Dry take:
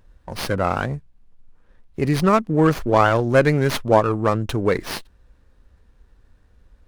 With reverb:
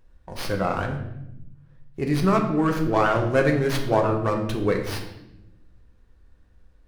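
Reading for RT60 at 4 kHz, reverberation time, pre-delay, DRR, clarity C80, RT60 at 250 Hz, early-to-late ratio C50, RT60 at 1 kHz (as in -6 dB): 0.70 s, 0.85 s, 3 ms, 2.0 dB, 9.5 dB, 1.5 s, 7.0 dB, 0.70 s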